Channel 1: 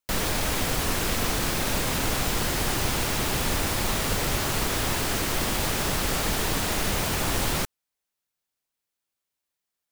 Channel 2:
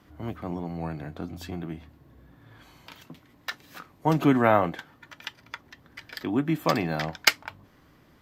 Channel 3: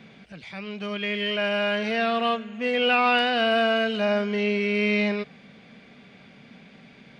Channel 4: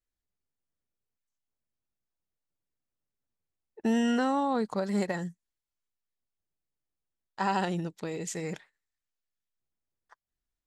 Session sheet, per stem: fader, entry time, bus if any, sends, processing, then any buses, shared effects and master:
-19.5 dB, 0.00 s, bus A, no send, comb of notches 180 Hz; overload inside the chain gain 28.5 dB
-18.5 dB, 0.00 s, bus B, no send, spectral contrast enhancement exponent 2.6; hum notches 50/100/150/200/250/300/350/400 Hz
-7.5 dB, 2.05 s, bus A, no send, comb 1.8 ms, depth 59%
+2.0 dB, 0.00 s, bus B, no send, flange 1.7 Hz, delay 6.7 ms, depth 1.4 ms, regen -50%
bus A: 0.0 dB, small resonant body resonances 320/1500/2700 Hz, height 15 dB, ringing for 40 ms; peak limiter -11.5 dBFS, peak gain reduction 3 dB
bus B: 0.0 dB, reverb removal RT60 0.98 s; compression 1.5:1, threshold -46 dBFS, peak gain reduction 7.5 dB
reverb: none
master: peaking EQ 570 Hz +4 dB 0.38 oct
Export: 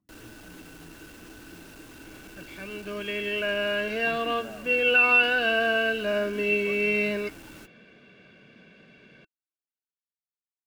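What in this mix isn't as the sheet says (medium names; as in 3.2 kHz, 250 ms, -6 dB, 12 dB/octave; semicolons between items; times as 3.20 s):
stem 4: muted; master: missing peaking EQ 570 Hz +4 dB 0.38 oct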